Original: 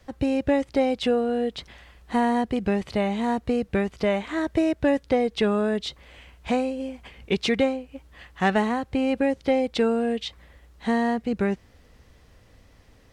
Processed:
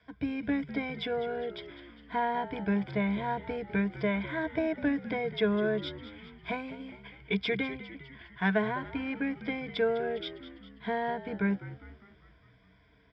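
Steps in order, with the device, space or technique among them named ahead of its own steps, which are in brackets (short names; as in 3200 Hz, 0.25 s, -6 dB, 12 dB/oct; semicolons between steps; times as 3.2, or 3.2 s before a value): ripple EQ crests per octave 1.7, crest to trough 16 dB; frequency-shifting delay pedal into a guitar cabinet (frequency-shifting echo 0.202 s, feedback 58%, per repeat -64 Hz, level -14 dB; speaker cabinet 77–4100 Hz, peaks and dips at 100 Hz -7 dB, 310 Hz -3 dB, 540 Hz -5 dB, 1800 Hz +9 dB); gain -9 dB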